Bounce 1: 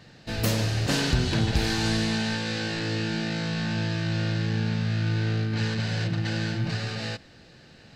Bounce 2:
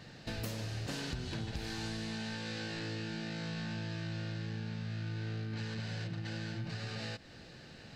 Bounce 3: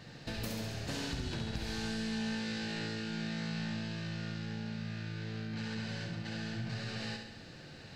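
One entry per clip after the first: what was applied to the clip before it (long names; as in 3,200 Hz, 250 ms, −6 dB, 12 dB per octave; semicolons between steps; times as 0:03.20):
downward compressor 5 to 1, threshold −37 dBFS, peak gain reduction 17 dB; level −1 dB
flutter between parallel walls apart 11.6 metres, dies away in 0.79 s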